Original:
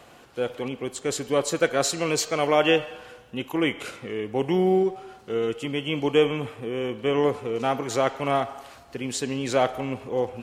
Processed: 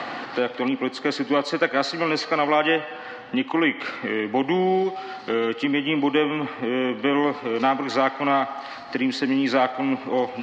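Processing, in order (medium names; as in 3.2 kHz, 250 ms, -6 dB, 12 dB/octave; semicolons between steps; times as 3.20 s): cabinet simulation 180–4800 Hz, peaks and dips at 270 Hz +8 dB, 420 Hz -4 dB, 800 Hz +6 dB, 1.2 kHz +6 dB, 1.9 kHz +10 dB, 4.4 kHz +7 dB; three bands compressed up and down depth 70%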